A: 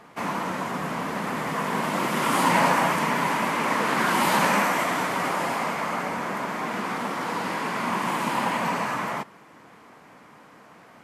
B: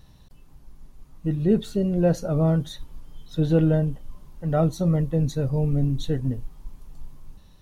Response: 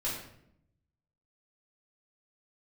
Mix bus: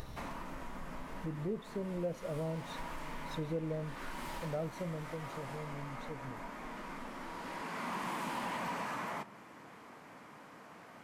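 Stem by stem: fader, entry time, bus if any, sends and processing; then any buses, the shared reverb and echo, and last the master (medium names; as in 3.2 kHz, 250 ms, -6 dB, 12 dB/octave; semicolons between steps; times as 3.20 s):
-4.5 dB, 0.00 s, send -19 dB, overload inside the chain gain 22 dB; auto duck -17 dB, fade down 0.45 s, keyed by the second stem
4.73 s -9.5 dB -> 5.28 s -20.5 dB, 0.00 s, no send, peaking EQ 520 Hz +8 dB 1.1 oct; upward compressor, threshold -23 dBFS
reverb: on, RT60 0.70 s, pre-delay 3 ms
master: compression 2.5:1, threshold -40 dBFS, peak gain reduction 14 dB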